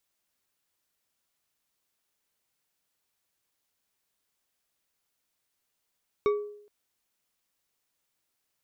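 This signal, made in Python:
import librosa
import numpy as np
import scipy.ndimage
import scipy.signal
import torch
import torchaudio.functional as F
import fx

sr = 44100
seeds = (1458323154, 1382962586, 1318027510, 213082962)

y = fx.strike_glass(sr, length_s=0.42, level_db=-19, body='bar', hz=415.0, decay_s=0.67, tilt_db=8.0, modes=5)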